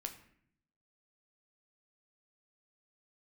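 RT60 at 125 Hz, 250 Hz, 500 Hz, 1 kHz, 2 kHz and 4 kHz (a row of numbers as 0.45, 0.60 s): 1.0, 0.95, 0.70, 0.60, 0.65, 0.50 s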